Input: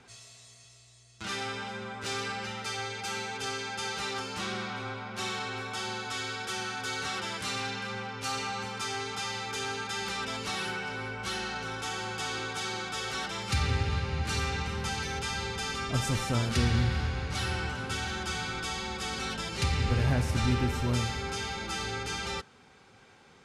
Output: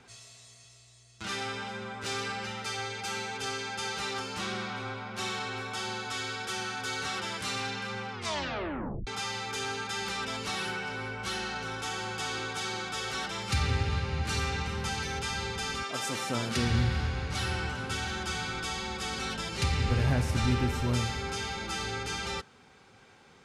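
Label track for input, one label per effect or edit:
8.120000	8.120000	tape stop 0.95 s
15.820000	16.680000	HPF 470 Hz -> 110 Hz

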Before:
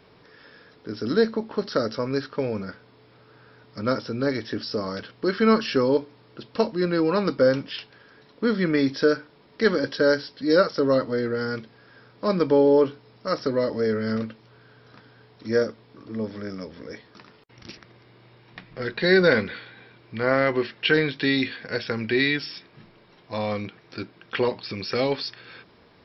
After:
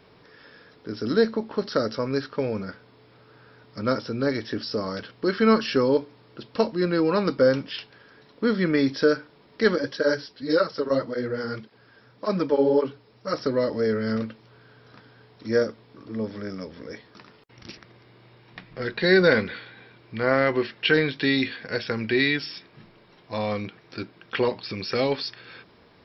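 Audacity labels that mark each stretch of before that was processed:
9.760000	13.340000	tape flanging out of phase nulls at 1.8 Hz, depth 8 ms

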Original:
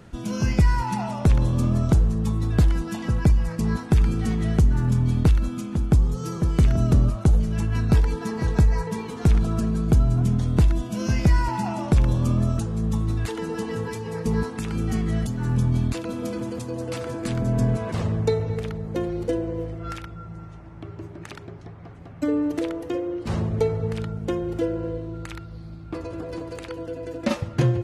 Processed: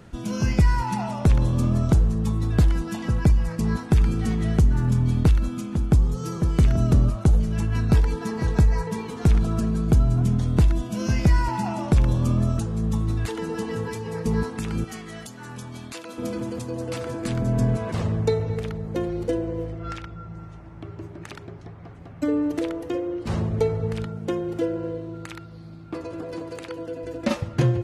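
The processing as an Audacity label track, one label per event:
14.840000	16.180000	HPF 1000 Hz 6 dB/oct
19.720000	20.370000	LPF 7000 Hz
24.050000	27.040000	HPF 120 Hz

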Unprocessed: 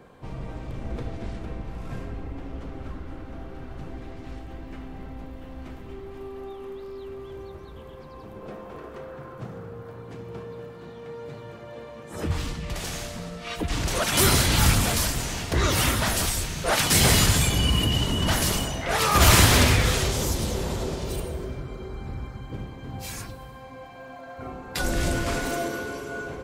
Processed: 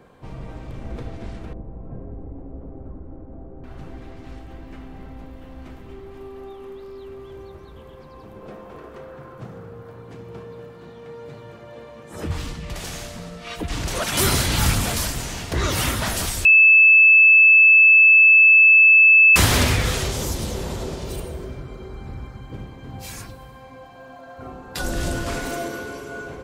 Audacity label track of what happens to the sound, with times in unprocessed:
1.530000	3.640000	Chebyshev low-pass 580 Hz
16.450000	19.360000	bleep 2620 Hz -8 dBFS
23.780000	25.300000	bell 2200 Hz -7 dB 0.24 oct

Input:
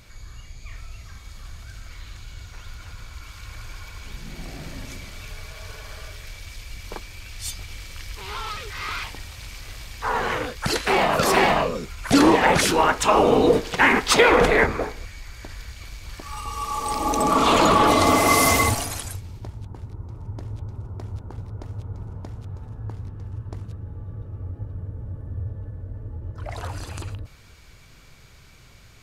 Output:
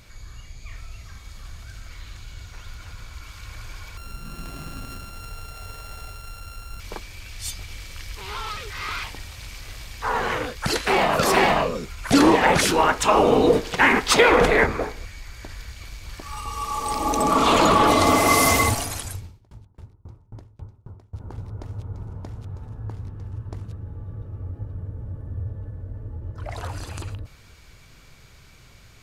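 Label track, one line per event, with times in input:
3.970000	6.800000	sample sorter in blocks of 32 samples
19.240000	21.200000	dB-ramp tremolo decaying 3.7 Hz, depth 30 dB

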